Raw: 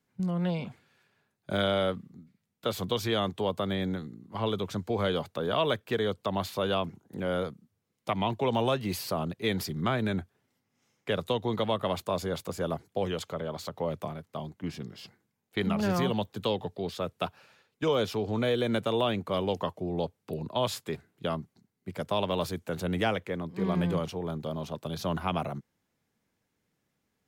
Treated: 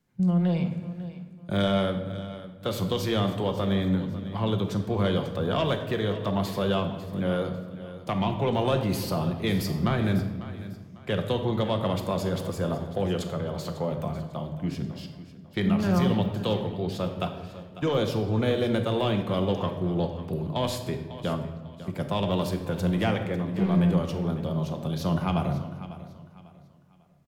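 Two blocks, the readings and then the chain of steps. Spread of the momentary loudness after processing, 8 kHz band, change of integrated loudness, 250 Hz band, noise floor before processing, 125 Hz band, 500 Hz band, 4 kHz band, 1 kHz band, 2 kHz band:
11 LU, +1.0 dB, +3.5 dB, +6.0 dB, −80 dBFS, +7.5 dB, +1.5 dB, +0.5 dB, +1.0 dB, +0.5 dB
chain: low-shelf EQ 180 Hz +9.5 dB
soft clipping −16 dBFS, distortion −23 dB
on a send: repeating echo 548 ms, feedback 32%, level −15 dB
on the sum: rectangular room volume 780 cubic metres, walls mixed, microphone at 0.86 metres

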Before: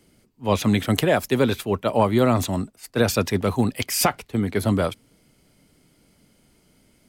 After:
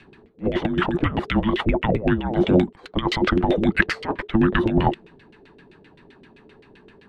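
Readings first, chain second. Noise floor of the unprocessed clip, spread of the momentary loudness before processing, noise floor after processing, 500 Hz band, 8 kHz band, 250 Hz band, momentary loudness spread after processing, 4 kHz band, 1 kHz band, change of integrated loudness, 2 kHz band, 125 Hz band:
−61 dBFS, 7 LU, −53 dBFS, −1.5 dB, below −20 dB, +2.0 dB, 7 LU, −1.5 dB, 0.0 dB, +0.5 dB, +4.5 dB, −0.5 dB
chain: stylus tracing distortion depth 0.029 ms
graphic EQ with 15 bands 160 Hz −5 dB, 400 Hz −3 dB, 1,000 Hz +4 dB, 4,000 Hz +10 dB, 10,000 Hz +4 dB
compressor whose output falls as the input rises −24 dBFS, ratio −0.5
frequency shifter −450 Hz
auto-filter low-pass saw down 7.7 Hz 410–2,700 Hz
level +5 dB

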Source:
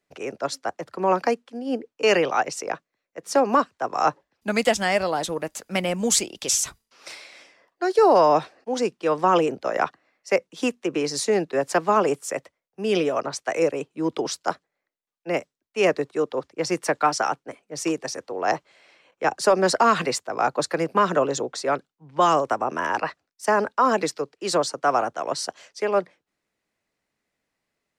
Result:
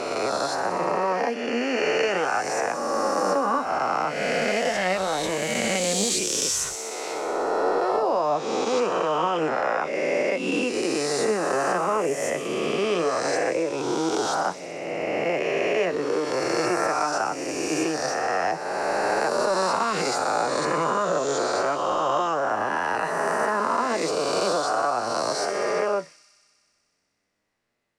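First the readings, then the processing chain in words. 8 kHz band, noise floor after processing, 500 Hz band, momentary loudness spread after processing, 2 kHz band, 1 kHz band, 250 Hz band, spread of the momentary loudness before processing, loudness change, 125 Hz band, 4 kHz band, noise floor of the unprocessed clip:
0.0 dB, −66 dBFS, −0.5 dB, 3 LU, +1.5 dB, −0.5 dB, −1.0 dB, 11 LU, −0.5 dB, −2.0 dB, +1.0 dB, −83 dBFS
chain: peak hold with a rise ahead of every peak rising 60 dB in 2.48 s
high-shelf EQ 5,600 Hz −8 dB
downward compressor 5 to 1, threshold −20 dBFS, peak gain reduction 11 dB
flanger 0.36 Hz, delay 8.2 ms, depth 5.5 ms, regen +60%
on a send: delay with a high-pass on its return 62 ms, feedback 83%, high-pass 5,100 Hz, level −9 dB
on the sum: level +3.5 dB

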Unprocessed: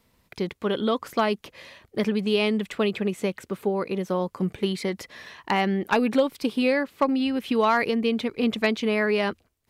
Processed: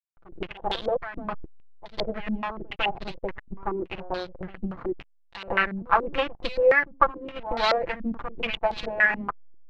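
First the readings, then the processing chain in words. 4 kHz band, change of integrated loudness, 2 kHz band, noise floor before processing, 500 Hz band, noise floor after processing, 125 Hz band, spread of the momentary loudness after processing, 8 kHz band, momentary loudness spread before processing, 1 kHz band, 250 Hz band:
−2.0 dB, −2.0 dB, +3.5 dB, −68 dBFS, −3.0 dB, −59 dBFS, −7.5 dB, 15 LU, below −10 dB, 8 LU, +1.0 dB, −10.5 dB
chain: lower of the sound and its delayed copy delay 5.9 ms
parametric band 230 Hz −11.5 dB 2.8 octaves
slack as between gear wheels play −28 dBFS
echo ahead of the sound 153 ms −16 dB
low-pass on a step sequencer 7 Hz 240–4,100 Hz
level +2 dB

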